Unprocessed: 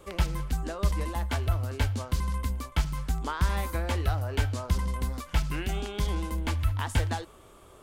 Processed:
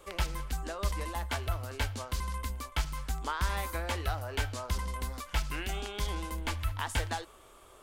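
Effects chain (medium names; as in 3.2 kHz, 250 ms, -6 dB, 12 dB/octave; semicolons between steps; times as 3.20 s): peaking EQ 140 Hz -10.5 dB 2.8 oct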